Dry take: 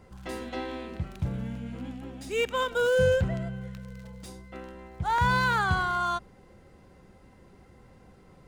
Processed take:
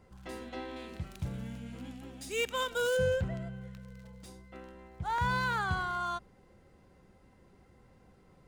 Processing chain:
0:00.76–0:02.97: high-shelf EQ 3,100 Hz +10 dB
level −6.5 dB

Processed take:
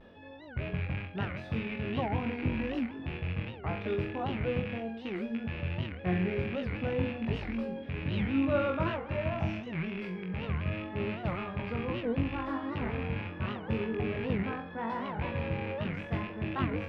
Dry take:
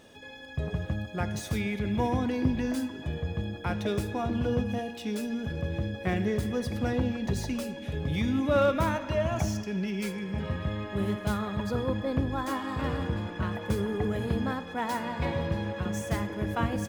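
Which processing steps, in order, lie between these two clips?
loose part that buzzes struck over −32 dBFS, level −21 dBFS
high-shelf EQ 7,200 Hz −4 dB
notch filter 6,500 Hz, Q 13
reversed playback
upward compression, threshold −41 dBFS
reversed playback
pitch vibrato 0.75 Hz 48 cents
high-frequency loss of the air 370 metres
flutter between parallel walls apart 3.8 metres, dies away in 0.32 s
wow of a warped record 78 rpm, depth 250 cents
level −4.5 dB

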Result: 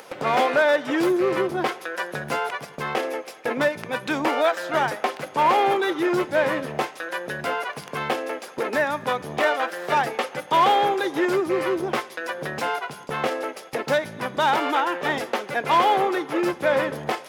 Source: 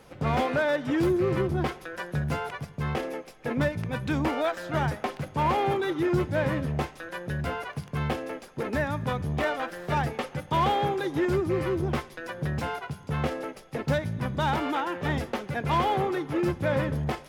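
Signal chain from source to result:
high-pass filter 400 Hz 12 dB per octave
noise gate with hold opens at −39 dBFS
upward compression, threshold −34 dBFS
level +7.5 dB

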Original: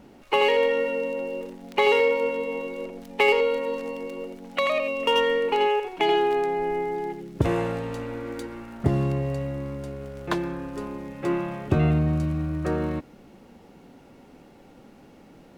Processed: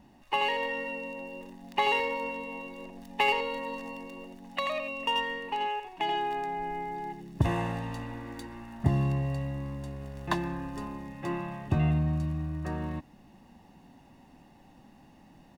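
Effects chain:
comb filter 1.1 ms, depth 66%
speech leveller within 5 dB 2 s
level −8 dB

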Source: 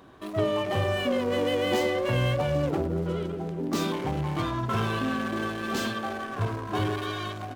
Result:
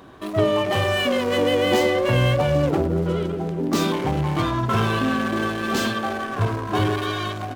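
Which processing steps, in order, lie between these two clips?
0:00.72–0:01.38: tilt shelving filter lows −3.5 dB
level +6.5 dB

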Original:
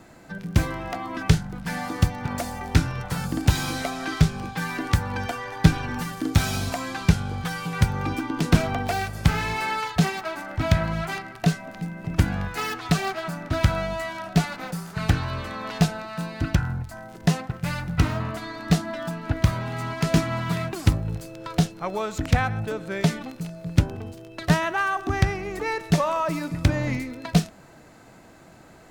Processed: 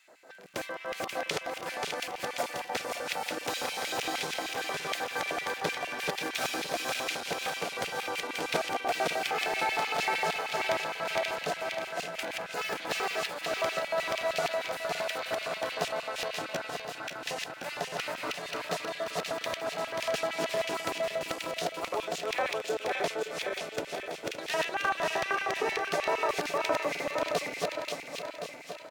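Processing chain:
feedback delay that plays each chunk backwards 267 ms, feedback 74%, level −1 dB
auto-filter high-pass square 6.5 Hz 510–2,500 Hz
single-tap delay 566 ms −11.5 dB
level −8 dB

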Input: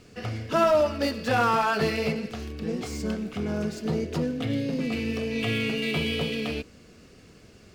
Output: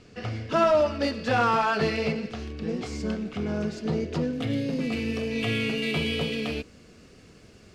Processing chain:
low-pass filter 6,300 Hz 12 dB per octave, from 0:04.33 12,000 Hz

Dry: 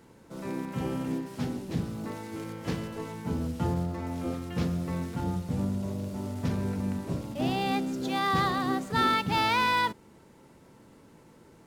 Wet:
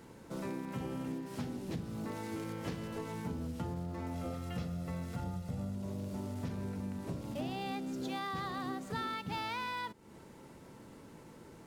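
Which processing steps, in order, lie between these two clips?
0:04.14–0:05.75: comb filter 1.5 ms, depth 49%
downward compressor 6 to 1, threshold −38 dBFS, peak gain reduction 16 dB
level +1.5 dB

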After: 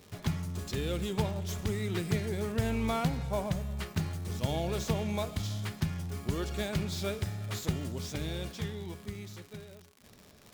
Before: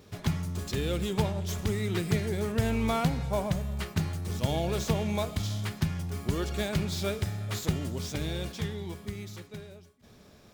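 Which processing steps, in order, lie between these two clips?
surface crackle 140 per second −38 dBFS
level −3 dB

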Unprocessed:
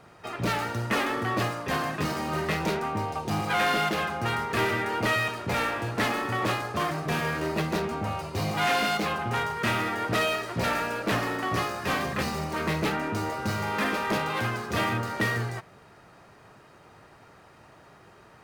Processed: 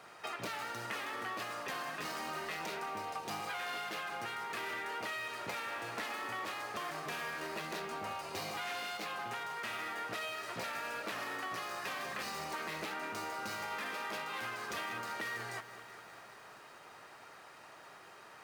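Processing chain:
high-pass filter 930 Hz 6 dB per octave
brickwall limiter −24 dBFS, peak gain reduction 6 dB
downward compressor 5 to 1, threshold −41 dBFS, peak gain reduction 11.5 dB
feedback echo at a low word length 194 ms, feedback 80%, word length 10 bits, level −14.5 dB
level +2.5 dB

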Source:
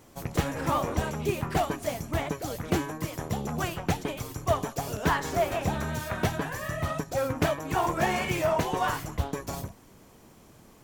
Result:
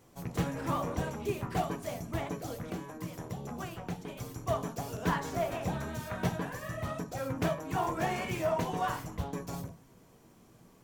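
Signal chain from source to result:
0:02.68–0:04.19: downward compressor 4 to 1, threshold −31 dBFS, peak gain reduction 9.5 dB
on a send: convolution reverb RT60 0.30 s, pre-delay 3 ms, DRR 6 dB
on the sum: level −7.5 dB

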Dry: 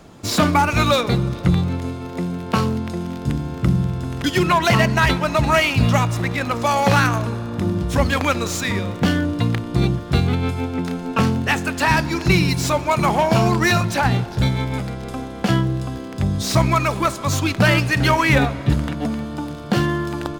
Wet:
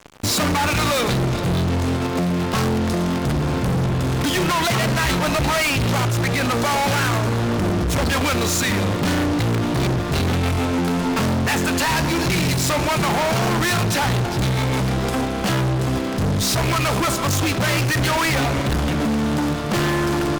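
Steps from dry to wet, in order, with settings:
in parallel at +2.5 dB: output level in coarse steps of 10 dB
on the sum: fuzz pedal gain 28 dB, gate −34 dBFS
level −5 dB

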